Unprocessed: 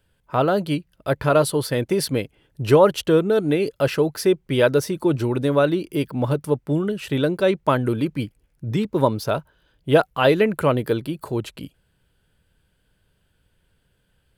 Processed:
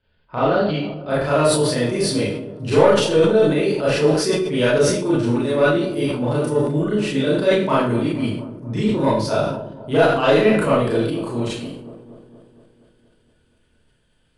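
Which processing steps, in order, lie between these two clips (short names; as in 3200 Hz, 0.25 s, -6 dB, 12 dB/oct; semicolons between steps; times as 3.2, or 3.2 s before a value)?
elliptic low-pass 4700 Hz, stop band 40 dB, from 1.09 s 10000 Hz; soft clip -9.5 dBFS, distortion -19 dB; dark delay 0.235 s, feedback 62%, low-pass 770 Hz, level -13.5 dB; reverb RT60 0.45 s, pre-delay 26 ms, DRR -8.5 dB; sustainer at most 54 dB/s; gain -5.5 dB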